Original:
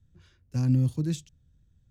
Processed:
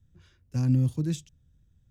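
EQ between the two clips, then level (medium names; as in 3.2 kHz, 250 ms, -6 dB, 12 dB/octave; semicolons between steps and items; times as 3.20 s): band-stop 4.3 kHz, Q 13; 0.0 dB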